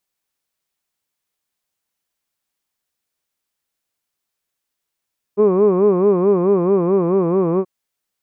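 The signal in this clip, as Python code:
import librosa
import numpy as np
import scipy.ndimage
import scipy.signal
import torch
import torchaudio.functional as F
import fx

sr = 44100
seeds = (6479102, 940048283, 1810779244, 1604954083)

y = fx.formant_vowel(sr, seeds[0], length_s=2.28, hz=198.0, glide_st=-2.0, vibrato_hz=4.6, vibrato_st=1.45, f1_hz=420.0, f2_hz=1100.0, f3_hz=2400.0)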